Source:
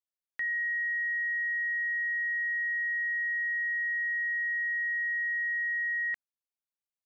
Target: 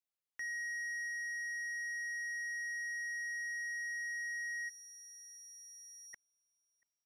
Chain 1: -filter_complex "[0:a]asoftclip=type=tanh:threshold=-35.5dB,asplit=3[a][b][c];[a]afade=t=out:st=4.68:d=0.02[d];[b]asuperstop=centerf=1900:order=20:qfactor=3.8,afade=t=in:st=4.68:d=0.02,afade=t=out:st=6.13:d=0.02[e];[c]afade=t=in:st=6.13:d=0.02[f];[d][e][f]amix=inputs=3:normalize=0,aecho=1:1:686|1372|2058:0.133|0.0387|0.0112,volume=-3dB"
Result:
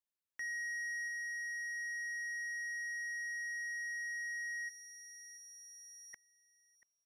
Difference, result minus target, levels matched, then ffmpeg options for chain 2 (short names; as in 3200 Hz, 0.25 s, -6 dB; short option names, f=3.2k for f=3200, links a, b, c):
echo-to-direct +10 dB
-filter_complex "[0:a]asoftclip=type=tanh:threshold=-35.5dB,asplit=3[a][b][c];[a]afade=t=out:st=4.68:d=0.02[d];[b]asuperstop=centerf=1900:order=20:qfactor=3.8,afade=t=in:st=4.68:d=0.02,afade=t=out:st=6.13:d=0.02[e];[c]afade=t=in:st=6.13:d=0.02[f];[d][e][f]amix=inputs=3:normalize=0,aecho=1:1:686|1372:0.0422|0.0122,volume=-3dB"